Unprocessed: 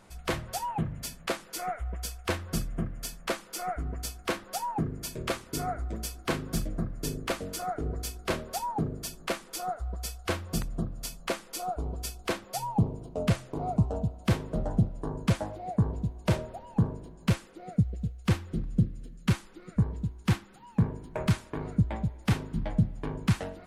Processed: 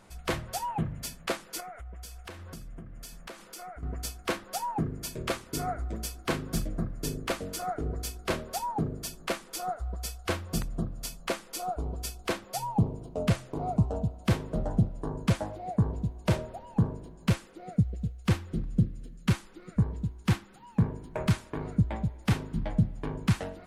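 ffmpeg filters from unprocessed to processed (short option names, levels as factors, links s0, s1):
-filter_complex "[0:a]asettb=1/sr,asplit=3[s0][s1][s2];[s0]atrim=end=1.604[s3];[s1]atrim=start=1.6:end=3.83,asetpts=PTS-STARTPTS,afade=t=in:d=0.004:c=qsin,afade=t=out:st=2.226:d=0.004:c=qsin,acompressor=threshold=0.01:ratio=6:attack=3.2:release=140:knee=1:detection=peak[s4];[s2]atrim=start=3.826[s5];[s3][s4]acrossfade=d=0.004:c1=hsin:c2=qsin[s6];[s6][s5]acrossfade=d=0.004:c1=qsin:c2=hsin"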